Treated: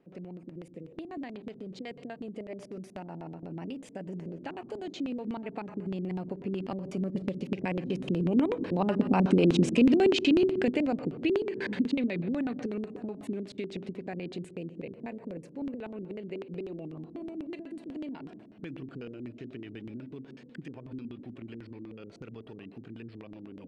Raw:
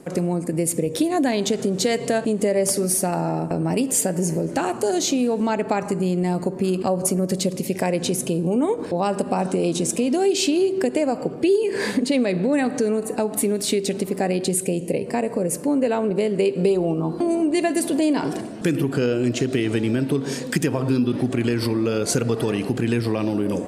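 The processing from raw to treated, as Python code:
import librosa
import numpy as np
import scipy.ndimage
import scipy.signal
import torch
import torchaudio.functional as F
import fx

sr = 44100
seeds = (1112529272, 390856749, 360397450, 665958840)

y = fx.doppler_pass(x, sr, speed_mps=8, closest_m=6.3, pass_at_s=9.56)
y = fx.dynamic_eq(y, sr, hz=650.0, q=1.2, threshold_db=-38.0, ratio=4.0, max_db=-4)
y = fx.filter_lfo_lowpass(y, sr, shape='square', hz=8.1, low_hz=280.0, high_hz=2900.0, q=1.6)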